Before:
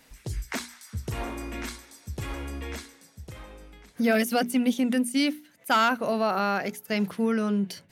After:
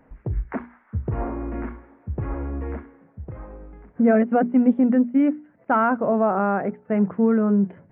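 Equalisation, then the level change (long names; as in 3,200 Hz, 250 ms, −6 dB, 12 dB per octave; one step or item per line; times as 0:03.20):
Gaussian smoothing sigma 6.3 samples
+7.0 dB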